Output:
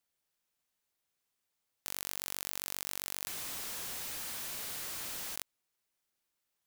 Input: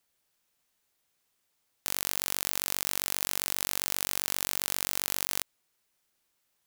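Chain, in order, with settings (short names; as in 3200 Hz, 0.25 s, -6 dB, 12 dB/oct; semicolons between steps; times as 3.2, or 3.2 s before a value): 3.27–5.36 infinite clipping; gain -8 dB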